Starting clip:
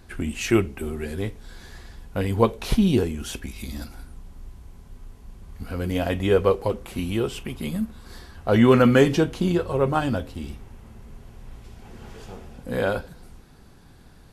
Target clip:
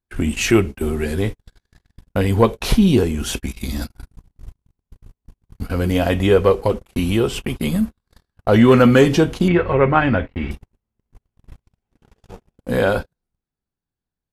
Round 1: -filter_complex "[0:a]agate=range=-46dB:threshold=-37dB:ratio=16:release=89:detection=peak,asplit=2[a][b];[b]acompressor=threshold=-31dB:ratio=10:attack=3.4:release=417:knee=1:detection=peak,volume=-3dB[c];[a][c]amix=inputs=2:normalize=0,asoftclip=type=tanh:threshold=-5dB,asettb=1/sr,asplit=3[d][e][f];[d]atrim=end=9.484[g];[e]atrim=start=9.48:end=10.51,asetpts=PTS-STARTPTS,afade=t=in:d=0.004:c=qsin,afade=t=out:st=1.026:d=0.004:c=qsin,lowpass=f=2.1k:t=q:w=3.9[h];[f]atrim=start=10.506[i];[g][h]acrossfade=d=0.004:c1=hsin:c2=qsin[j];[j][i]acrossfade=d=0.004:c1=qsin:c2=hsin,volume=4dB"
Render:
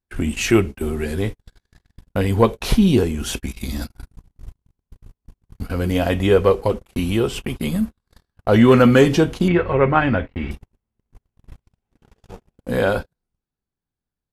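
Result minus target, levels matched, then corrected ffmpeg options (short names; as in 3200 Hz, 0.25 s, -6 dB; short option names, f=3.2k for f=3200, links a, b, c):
compressor: peak gain reduction +7 dB
-filter_complex "[0:a]agate=range=-46dB:threshold=-37dB:ratio=16:release=89:detection=peak,asplit=2[a][b];[b]acompressor=threshold=-23dB:ratio=10:attack=3.4:release=417:knee=1:detection=peak,volume=-3dB[c];[a][c]amix=inputs=2:normalize=0,asoftclip=type=tanh:threshold=-5dB,asettb=1/sr,asplit=3[d][e][f];[d]atrim=end=9.484[g];[e]atrim=start=9.48:end=10.51,asetpts=PTS-STARTPTS,afade=t=in:d=0.004:c=qsin,afade=t=out:st=1.026:d=0.004:c=qsin,lowpass=f=2.1k:t=q:w=3.9[h];[f]atrim=start=10.506[i];[g][h]acrossfade=d=0.004:c1=hsin:c2=qsin[j];[j][i]acrossfade=d=0.004:c1=qsin:c2=hsin,volume=4dB"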